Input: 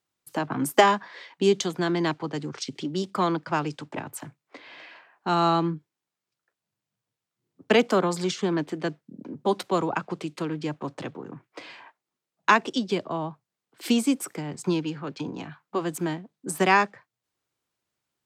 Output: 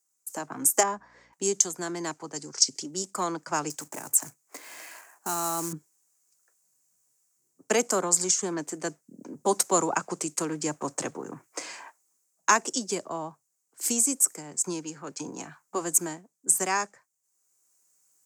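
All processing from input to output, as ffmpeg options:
ffmpeg -i in.wav -filter_complex "[0:a]asettb=1/sr,asplit=3[link_01][link_02][link_03];[link_01]atrim=end=0.834[link_04];[link_02]atrim=start=0.83:end=1.33,asetpts=PTS-STARTPTS,afade=type=in:duration=0.004:curve=qsin,afade=type=out:start_time=0.496:duration=0.004:curve=qsin,lowpass=frequency=1000:poles=1,aeval=exprs='val(0)+0.00316*(sin(2*PI*60*n/s)+sin(2*PI*2*60*n/s)/2+sin(2*PI*3*60*n/s)/3+sin(2*PI*4*60*n/s)/4+sin(2*PI*5*60*n/s)/5)':channel_layout=same[link_05];[link_03]atrim=start=1.326[link_06];[link_04][link_05]acrossfade=duration=0.004:curve1=hsin:curve2=qsin[link_07];[link_07][link_06]acrossfade=duration=0.004:curve1=qsin:curve2=hsin,asettb=1/sr,asplit=3[link_08][link_09][link_10];[link_08]atrim=end=2.364[link_11];[link_09]atrim=start=2.36:end=2.82,asetpts=PTS-STARTPTS,afade=type=in:duration=0.004:curve=qsin,afade=type=out:start_time=0.456:duration=0.004:curve=qsin,equalizer=frequency=4900:width_type=o:width=0.6:gain=10.5,bandreject=frequency=1200:width=16[link_12];[link_10]atrim=start=2.816[link_13];[link_11][link_12]acrossfade=duration=0.004:curve1=hsin:curve2=qsin[link_14];[link_14][link_13]acrossfade=duration=0.004:curve1=qsin:curve2=hsin,asettb=1/sr,asplit=3[link_15][link_16][link_17];[link_15]atrim=end=3.704[link_18];[link_16]atrim=start=3.7:end=5.73,asetpts=PTS-STARTPTS,afade=type=in:duration=0.004:curve=qsin,afade=type=out:start_time=2.026:duration=0.004:curve=qsin,bandreject=frequency=530:width=17,acompressor=threshold=-36dB:ratio=2.5:attack=3.2:release=140:knee=1:detection=peak,acrusher=bits=4:mode=log:mix=0:aa=0.000001[link_19];[link_17]atrim=start=5.726[link_20];[link_18][link_19]acrossfade=duration=0.004:curve1=hsin:curve2=qsin[link_21];[link_21][link_20]acrossfade=duration=0.004:curve1=qsin:curve2=hsin,highpass=frequency=380:poles=1,highshelf=frequency=5000:width_type=q:width=3:gain=13,dynaudnorm=framelen=480:gausssize=3:maxgain=10dB,volume=-5dB" out.wav

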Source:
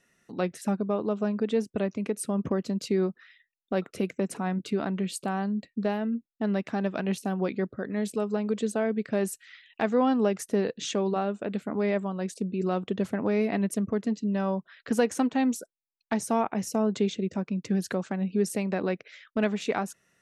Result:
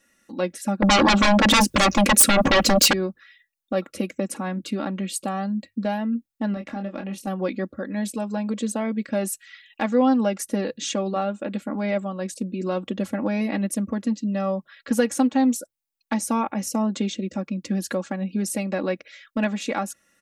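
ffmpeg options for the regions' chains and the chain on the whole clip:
ffmpeg -i in.wav -filter_complex "[0:a]asettb=1/sr,asplit=3[link_01][link_02][link_03];[link_01]atrim=end=0.824[link_04];[link_02]atrim=start=0.82:end=2.93,asetpts=PTS-STARTPTS,afade=type=in:duration=0.004:curve=qsin,afade=type=out:start_time=2.106:duration=0.004:curve=qsin,highpass=frequency=200:poles=1,aeval=exprs='0.158*sin(PI/2*7.08*val(0)/0.158)':channel_layout=same[link_05];[link_03]atrim=start=2.926[link_06];[link_04][link_05]acrossfade=duration=0.004:curve1=hsin:curve2=qsin[link_07];[link_07][link_06]acrossfade=duration=0.004:curve1=qsin:curve2=hsin,asettb=1/sr,asplit=3[link_08][link_09][link_10];[link_08]atrim=end=6.544[link_11];[link_09]atrim=start=6.54:end=7.27,asetpts=PTS-STARTPTS,afade=type=in:duration=0.004:curve=qsin,afade=type=out:start_time=0.726:duration=0.004:curve=qsin,highshelf=frequency=3400:gain=-8,acompressor=threshold=-33dB:ratio=2.5:attack=3.2:release=140:knee=1:detection=peak,asplit=2[link_12][link_13];[link_13]adelay=25,volume=-6dB[link_14];[link_12][link_14]amix=inputs=2:normalize=0,atrim=end_sample=32193[link_15];[link_10]atrim=start=7.266[link_16];[link_11][link_15]acrossfade=duration=0.004:curve1=hsin:curve2=qsin[link_17];[link_17][link_16]acrossfade=duration=0.004:curve1=qsin:curve2=hsin,highshelf=frequency=7300:gain=7,bandreject=frequency=50:width_type=h:width=6,bandreject=frequency=100:width_type=h:width=6,bandreject=frequency=150:width_type=h:width=6,aecho=1:1:3.6:0.8,volume=1dB" out.wav

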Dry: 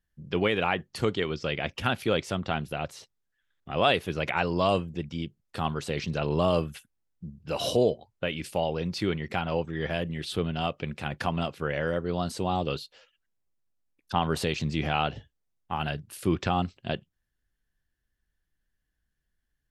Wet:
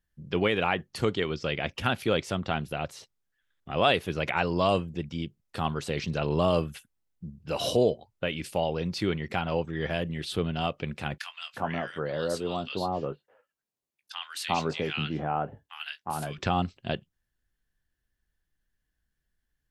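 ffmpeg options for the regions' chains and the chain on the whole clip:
ffmpeg -i in.wav -filter_complex "[0:a]asettb=1/sr,asplit=3[link_01][link_02][link_03];[link_01]atrim=end=11.184[link_04];[link_02]atrim=start=11.18:end=16.38,asetpts=PTS-STARTPTS,afade=type=in:duration=0.004:curve=qsin,afade=type=out:start_time=5.196:duration=0.004:curve=qsin,highpass=frequency=210:poles=1,asplit=2[link_05][link_06];[link_06]adelay=20,volume=-13dB[link_07];[link_05][link_07]amix=inputs=2:normalize=0,atrim=end_sample=229320,acrossover=split=1500[link_08][link_09];[link_08]adelay=360[link_10];[link_10][link_09]amix=inputs=2:normalize=0,atrim=end_sample=229320[link_11];[link_03]atrim=start=16.376[link_12];[link_04][link_11]acrossfade=duration=0.004:curve1=hsin:curve2=qsin[link_13];[link_13][link_12]acrossfade=duration=0.004:curve1=qsin:curve2=hsin" out.wav

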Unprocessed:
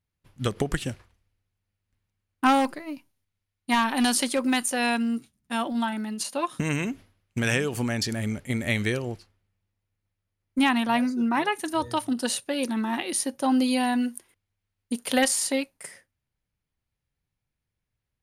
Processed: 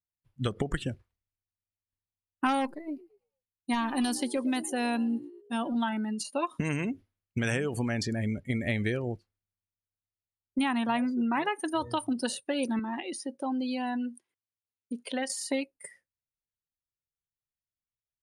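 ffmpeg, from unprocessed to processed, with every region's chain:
ffmpeg -i in.wav -filter_complex "[0:a]asettb=1/sr,asplit=3[link_01][link_02][link_03];[link_01]atrim=end=2.654[link_04];[link_02]atrim=start=2.65:end=5.76,asetpts=PTS-STARTPTS,afade=type=in:duration=0.004:curve=qsin,afade=type=out:start_time=3.106:duration=0.004:curve=qsin,equalizer=frequency=1600:width_type=o:width=2.7:gain=-6,asplit=5[link_05][link_06][link_07][link_08][link_09];[link_06]adelay=112,afreqshift=59,volume=-17.5dB[link_10];[link_07]adelay=224,afreqshift=118,volume=-23.2dB[link_11];[link_08]adelay=336,afreqshift=177,volume=-28.9dB[link_12];[link_09]adelay=448,afreqshift=236,volume=-34.5dB[link_13];[link_05][link_10][link_11][link_12][link_13]amix=inputs=5:normalize=0,atrim=end_sample=137151[link_14];[link_03]atrim=start=5.756[link_15];[link_04][link_14]acrossfade=duration=0.004:curve1=hsin:curve2=qsin[link_16];[link_16][link_15]acrossfade=duration=0.004:curve1=qsin:curve2=hsin,asettb=1/sr,asplit=3[link_17][link_18][link_19];[link_17]atrim=end=12.794[link_20];[link_18]atrim=start=12.79:end=15.3,asetpts=PTS-STARTPTS,afade=type=in:duration=0.004:curve=qsin,afade=type=out:start_time=2.506:duration=0.004:curve=qsin,highpass=130,lowpass=7600,acompressor=threshold=-34dB:ratio=2:attack=3.2:release=140:knee=1:detection=peak[link_21];[link_19]atrim=start=15.296[link_22];[link_20][link_21]acrossfade=duration=0.004:curve1=hsin:curve2=qsin[link_23];[link_23][link_22]acrossfade=duration=0.004:curve1=qsin:curve2=hsin,afftdn=noise_reduction=20:noise_floor=-38,acrossover=split=1900|6600[link_24][link_25][link_26];[link_24]acompressor=threshold=-26dB:ratio=4[link_27];[link_25]acompressor=threshold=-39dB:ratio=4[link_28];[link_26]acompressor=threshold=-41dB:ratio=4[link_29];[link_27][link_28][link_29]amix=inputs=3:normalize=0" out.wav

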